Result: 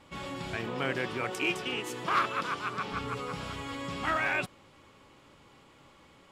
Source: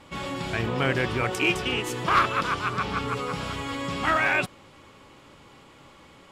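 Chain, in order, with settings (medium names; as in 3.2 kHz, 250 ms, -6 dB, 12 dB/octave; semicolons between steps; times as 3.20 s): 0.56–2.93 s: high-pass 160 Hz 12 dB/octave; trim -6.5 dB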